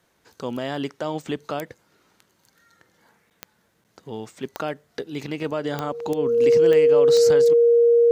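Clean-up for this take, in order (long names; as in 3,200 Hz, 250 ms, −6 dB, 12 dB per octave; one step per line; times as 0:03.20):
click removal
notch filter 470 Hz, Q 30
repair the gap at 0:03.30/0:03.84, 8.5 ms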